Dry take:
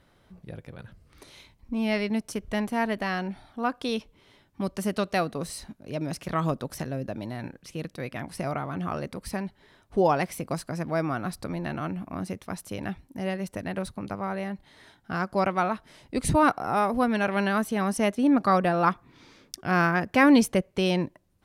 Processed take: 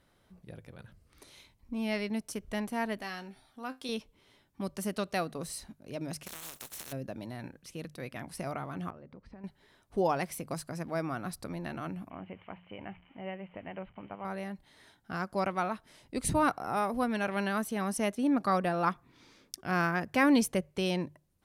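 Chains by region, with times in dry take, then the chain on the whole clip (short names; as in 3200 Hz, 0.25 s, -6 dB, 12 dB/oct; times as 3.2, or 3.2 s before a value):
3.01–3.89 high shelf 2900 Hz +8 dB + resonator 130 Hz, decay 0.19 s, mix 70%
6.26–6.91 spectral contrast lowered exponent 0.21 + notch 4800 Hz, Q 16 + compressor 16:1, threshold -35 dBFS
8.9–9.44 compressor, threshold -37 dBFS + tape spacing loss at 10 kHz 42 dB
12.1–14.25 switching spikes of -29 dBFS + rippled Chebyshev low-pass 3100 Hz, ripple 6 dB + de-hum 59.5 Hz, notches 3
whole clip: bell 12000 Hz +5.5 dB 1.7 oct; notches 50/100/150 Hz; gain -6.5 dB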